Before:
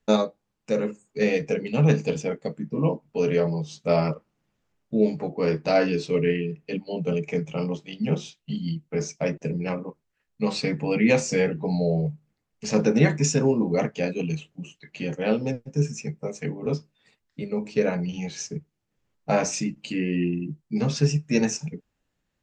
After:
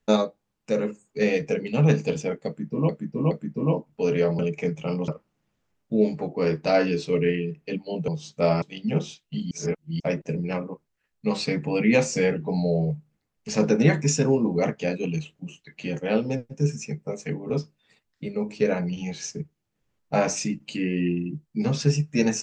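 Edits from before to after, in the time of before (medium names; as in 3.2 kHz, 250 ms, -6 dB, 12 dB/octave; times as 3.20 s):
2.47–2.89 s: loop, 3 plays
3.55–4.09 s: swap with 7.09–7.78 s
8.67–9.16 s: reverse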